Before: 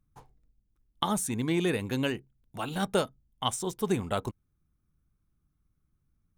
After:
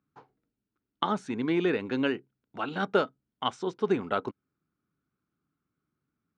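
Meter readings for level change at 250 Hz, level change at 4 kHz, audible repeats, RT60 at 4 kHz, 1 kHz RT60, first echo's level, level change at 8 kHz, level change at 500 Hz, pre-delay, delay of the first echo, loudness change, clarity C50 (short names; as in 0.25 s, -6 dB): +1.0 dB, -2.5 dB, none, none, none, none, under -15 dB, +2.5 dB, none, none, +1.0 dB, none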